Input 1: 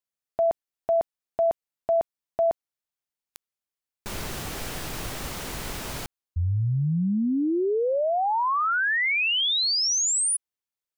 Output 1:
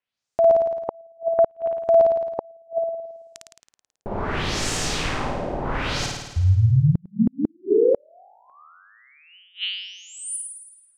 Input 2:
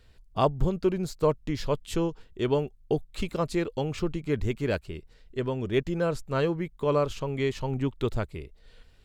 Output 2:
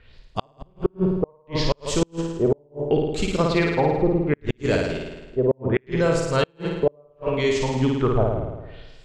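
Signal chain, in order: LFO low-pass sine 0.69 Hz 590–7600 Hz; flutter echo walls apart 9.3 m, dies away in 1.1 s; inverted gate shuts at -13 dBFS, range -39 dB; trim +4.5 dB

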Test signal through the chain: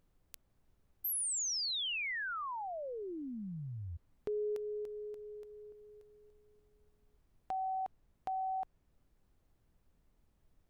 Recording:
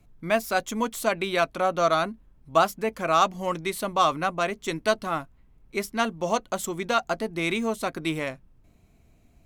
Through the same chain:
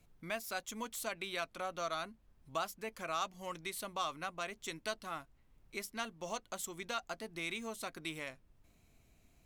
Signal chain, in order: tilt shelf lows -5 dB, about 1.4 kHz; compression 1.5:1, threshold -46 dBFS; added noise brown -64 dBFS; trim -5.5 dB

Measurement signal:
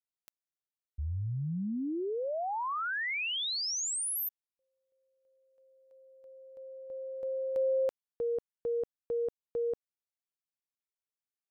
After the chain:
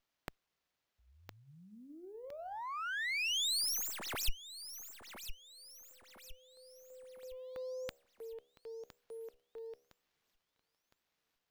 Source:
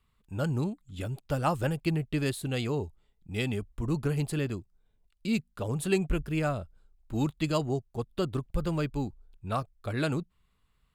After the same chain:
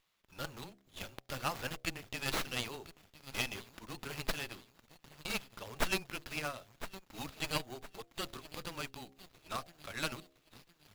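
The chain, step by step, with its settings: de-hum 71.28 Hz, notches 11; frequency shift -17 Hz; differentiator; on a send: feedback echo behind a high-pass 1011 ms, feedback 41%, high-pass 4.9 kHz, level -10.5 dB; on the sum: sliding maximum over 5 samples; trim +9 dB

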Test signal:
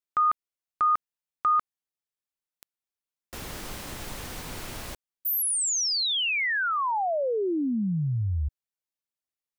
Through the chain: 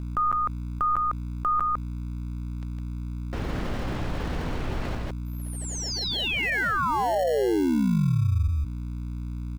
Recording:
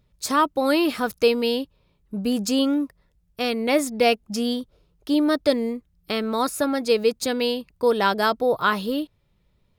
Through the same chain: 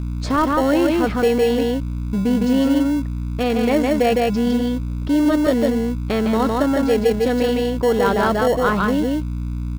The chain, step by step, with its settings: tape spacing loss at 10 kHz 30 dB; delay 158 ms -3.5 dB; hum 60 Hz, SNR 15 dB; in parallel at -10 dB: sample-and-hold 36×; on the sum: level flattener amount 50%

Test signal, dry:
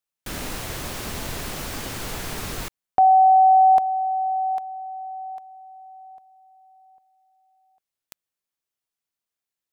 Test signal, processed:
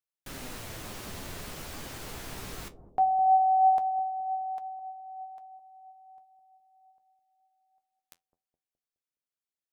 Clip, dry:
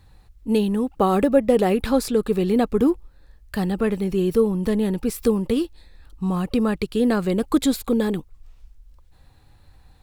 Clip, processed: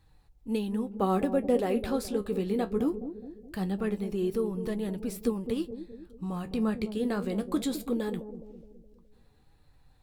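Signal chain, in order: flange 0.21 Hz, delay 6.1 ms, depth 9.5 ms, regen +55%; on a send: bucket-brigade echo 209 ms, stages 1024, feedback 49%, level -10 dB; on the sum: trim -5.5 dB

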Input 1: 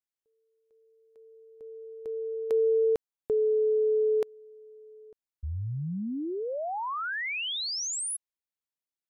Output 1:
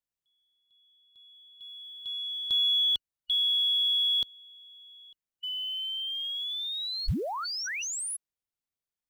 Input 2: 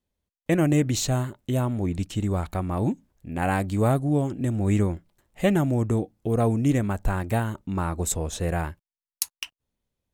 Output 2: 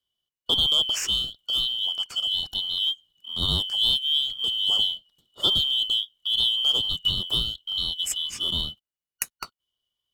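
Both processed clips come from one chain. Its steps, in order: four frequency bands reordered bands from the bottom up 2413; bass shelf 210 Hz +10.5 dB; short-mantissa float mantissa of 4-bit; trim -1.5 dB

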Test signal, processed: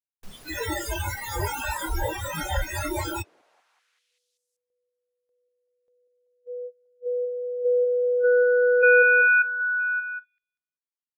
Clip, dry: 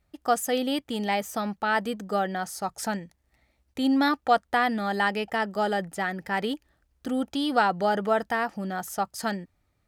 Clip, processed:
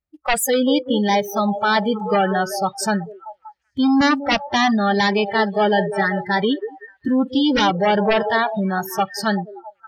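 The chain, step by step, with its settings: sine folder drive 12 dB, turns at -8.5 dBFS; repeats whose band climbs or falls 192 ms, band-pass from 430 Hz, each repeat 0.7 oct, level -5 dB; spectral noise reduction 30 dB; trim -4 dB

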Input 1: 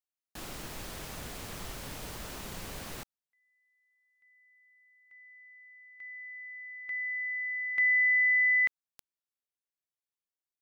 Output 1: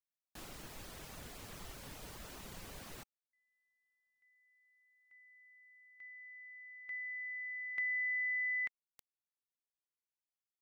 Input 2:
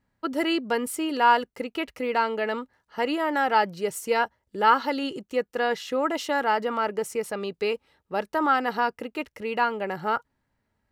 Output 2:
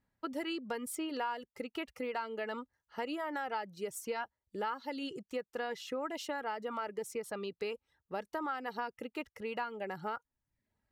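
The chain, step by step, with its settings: reverb removal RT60 0.52 s; compression 6:1, threshold -27 dBFS; trim -7 dB

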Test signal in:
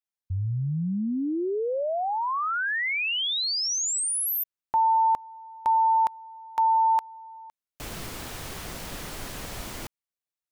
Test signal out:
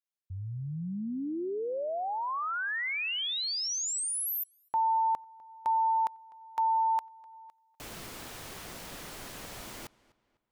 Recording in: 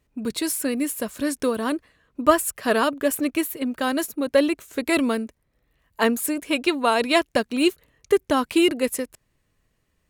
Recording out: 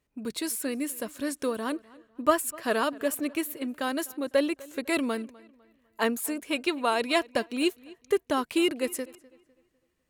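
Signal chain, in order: bass shelf 120 Hz -8 dB; on a send: filtered feedback delay 251 ms, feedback 37%, low-pass 4.3 kHz, level -22 dB; on the sum: trim -5.5 dB

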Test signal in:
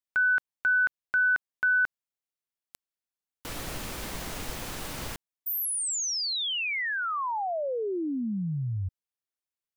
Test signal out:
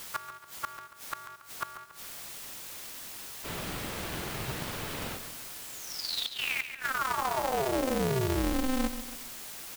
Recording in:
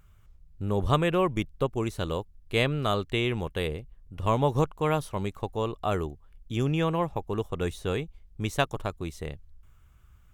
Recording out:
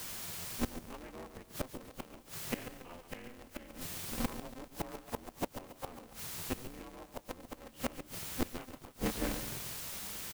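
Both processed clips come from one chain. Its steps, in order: frequency axis rescaled in octaves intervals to 91%; low-pass 4.2 kHz 24 dB/octave; in parallel at -6 dB: word length cut 6-bit, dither triangular; on the sum: inverted gate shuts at -20 dBFS, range -25 dB; on a send: feedback delay 140 ms, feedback 40%, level -10 dB; on the sum: polarity switched at an audio rate 130 Hz; trim -1.5 dB

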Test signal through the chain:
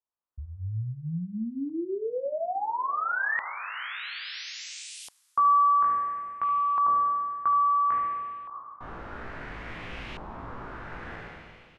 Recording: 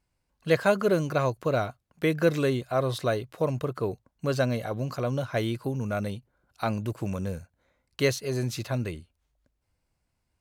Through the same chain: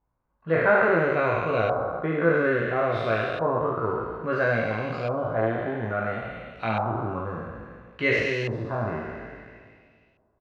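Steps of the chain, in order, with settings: spectral sustain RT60 2.05 s; early reflections 18 ms -3.5 dB, 74 ms -9 dB; LFO low-pass saw up 0.59 Hz 960–2800 Hz; trim -5 dB

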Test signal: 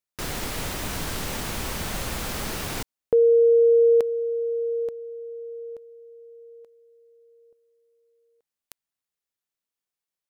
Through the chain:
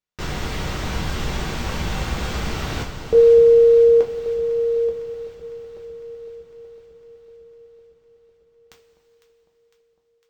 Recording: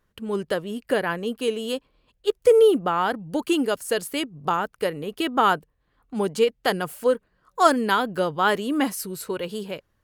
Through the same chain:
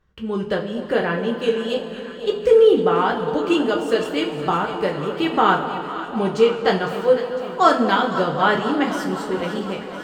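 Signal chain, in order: boxcar filter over 4 samples; bass shelf 170 Hz +5.5 dB; on a send: echo whose repeats swap between lows and highs 252 ms, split 960 Hz, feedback 82%, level -11 dB; on the sum: two-slope reverb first 0.25 s, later 3.6 s, from -18 dB, DRR -0.5 dB

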